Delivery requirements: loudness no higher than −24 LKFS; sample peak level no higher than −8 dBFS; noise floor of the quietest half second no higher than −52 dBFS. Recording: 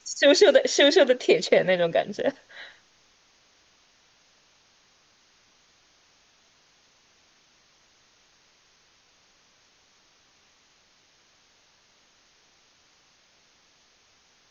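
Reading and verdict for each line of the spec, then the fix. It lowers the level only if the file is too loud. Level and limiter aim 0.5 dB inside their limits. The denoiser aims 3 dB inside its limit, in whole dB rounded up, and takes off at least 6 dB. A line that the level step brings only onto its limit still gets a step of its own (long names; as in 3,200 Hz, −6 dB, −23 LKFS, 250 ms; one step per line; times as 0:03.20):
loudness −20.0 LKFS: out of spec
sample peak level −5.0 dBFS: out of spec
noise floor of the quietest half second −62 dBFS: in spec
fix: level −4.5 dB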